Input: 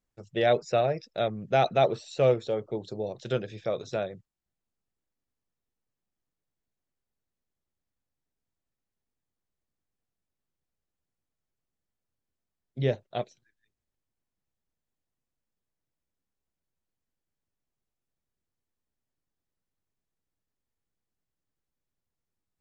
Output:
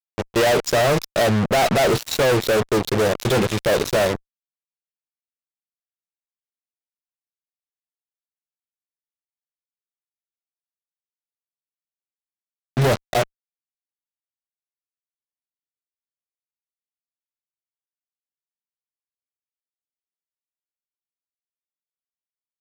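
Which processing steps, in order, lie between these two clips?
fuzz pedal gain 49 dB, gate −42 dBFS
level −2 dB

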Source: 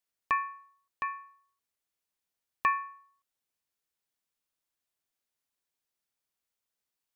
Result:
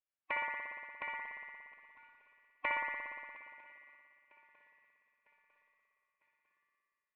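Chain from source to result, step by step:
low-pass filter 2,800 Hz 24 dB per octave
low-shelf EQ 190 Hz −11.5 dB
tuned comb filter 710 Hz, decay 0.42 s, mix 80%
on a send: feedback echo with a long and a short gap by turns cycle 951 ms, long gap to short 3 to 1, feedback 45%, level −23 dB
on the sum: phase-vocoder pitch shift with formants kept −3.5 semitones
spring reverb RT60 2.3 s, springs 58 ms, chirp 55 ms, DRR 0 dB
level +5 dB

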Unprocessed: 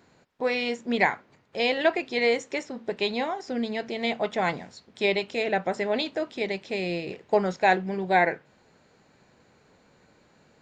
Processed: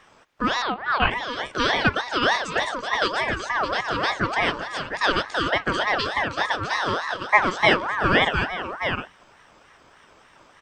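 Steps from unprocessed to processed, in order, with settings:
parametric band 2,900 Hz −3.5 dB 0.25 octaves
in parallel at +0.5 dB: downward compressor, threshold −31 dBFS, peak gain reduction 14.5 dB
0:02.38–0:03.02: on the sum: all-pass dispersion highs, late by 58 ms, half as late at 350 Hz
0:07.22–0:07.78: double-tracking delay 14 ms −2.5 dB
on a send: multi-tap delay 376/708 ms −13/−6.5 dB
0:00.62–0:01.11: on the sum: one-pitch LPC vocoder at 8 kHz 260 Hz
ring modulator whose carrier an LFO sweeps 1,100 Hz, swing 35%, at 3.4 Hz
level +2.5 dB

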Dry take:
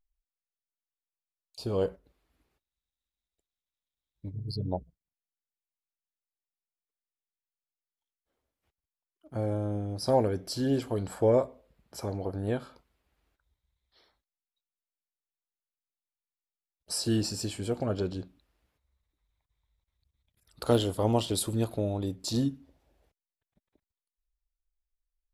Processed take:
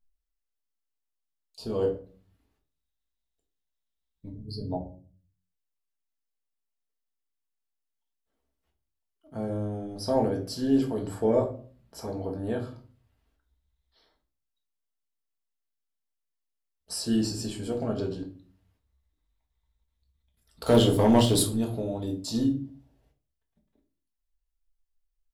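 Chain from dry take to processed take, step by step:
parametric band 2,300 Hz −4 dB 0.21 octaves
0:20.66–0:21.43: leveller curve on the samples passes 2
rectangular room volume 280 cubic metres, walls furnished, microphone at 1.6 metres
level −3 dB

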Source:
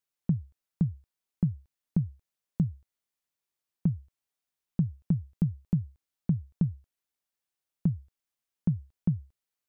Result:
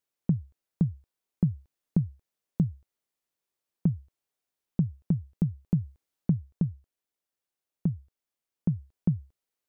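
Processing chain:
speech leveller within 5 dB 0.5 s
parametric band 430 Hz +5.5 dB 1.8 octaves

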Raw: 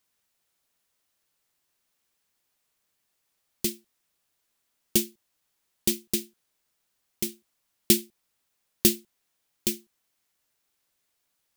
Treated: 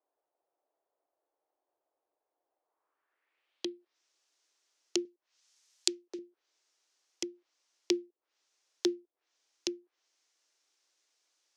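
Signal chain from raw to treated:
Butterworth high-pass 290 Hz 72 dB per octave
treble cut that deepens with the level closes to 450 Hz, closed at −30 dBFS
0:05.05–0:06.19: spectral tilt +3 dB per octave
low-pass filter sweep 710 Hz → 6,000 Hz, 0:02.60–0:03.97
level −1 dB

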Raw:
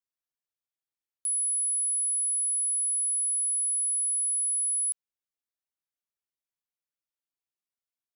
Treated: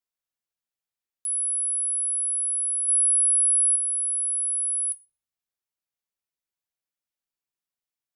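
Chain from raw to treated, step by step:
0:02.88–0:03.76: dynamic equaliser 9,600 Hz, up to +6 dB, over −40 dBFS, Q 0.84
on a send: convolution reverb RT60 0.50 s, pre-delay 5 ms, DRR 10 dB

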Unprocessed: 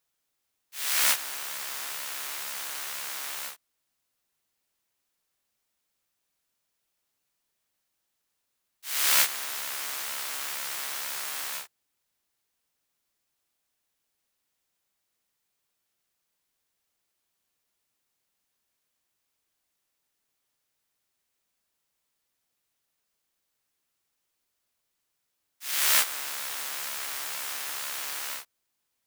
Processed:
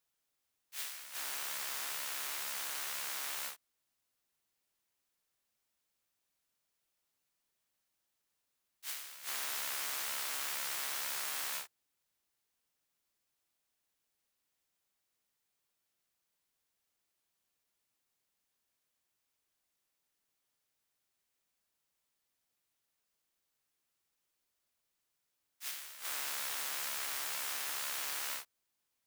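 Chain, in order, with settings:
compressor whose output falls as the input rises −34 dBFS, ratio −1
level −6.5 dB

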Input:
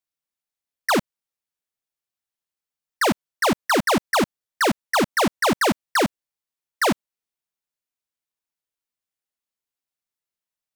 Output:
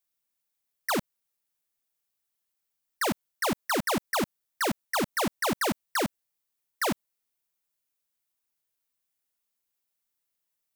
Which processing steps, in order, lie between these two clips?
high-shelf EQ 9,800 Hz +9.5 dB
brickwall limiter −22 dBFS, peak gain reduction 10.5 dB
level +2 dB

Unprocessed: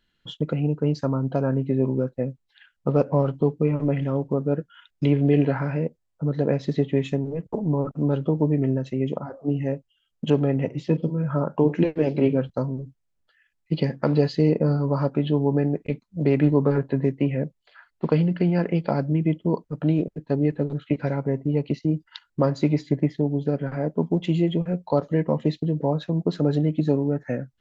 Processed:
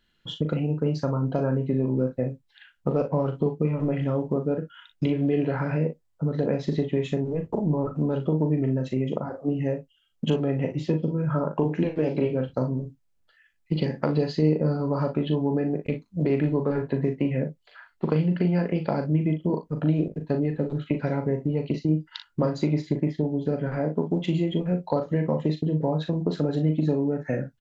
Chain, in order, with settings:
downward compressor 2.5 to 1, threshold −24 dBFS, peak gain reduction 7.5 dB
on a send: ambience of single reflections 39 ms −7 dB, 58 ms −14 dB
on the sum: level +1.5 dB

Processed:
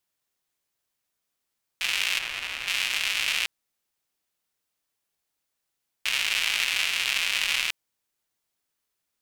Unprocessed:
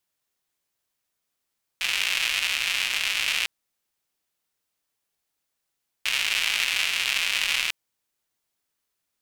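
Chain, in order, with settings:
0:02.19–0:02.68: high-shelf EQ 2,300 Hz −11.5 dB
level −1 dB

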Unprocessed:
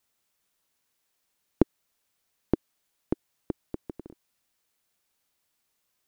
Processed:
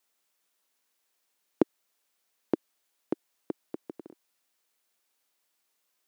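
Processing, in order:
high-pass filter 270 Hz 12 dB per octave

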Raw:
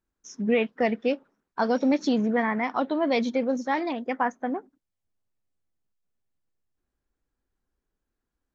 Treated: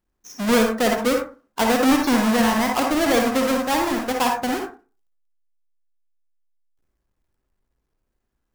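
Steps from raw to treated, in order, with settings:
each half-wave held at its own peak
convolution reverb RT60 0.30 s, pre-delay 47 ms, DRR 1.5 dB

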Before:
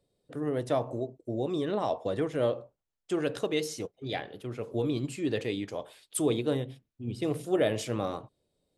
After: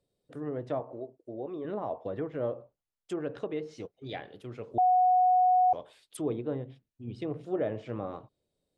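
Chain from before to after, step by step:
treble cut that deepens with the level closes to 1,400 Hz, closed at −26 dBFS
0:00.80–0:01.65: bass and treble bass −10 dB, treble −8 dB
0:04.78–0:05.73: beep over 734 Hz −15 dBFS
level −4.5 dB

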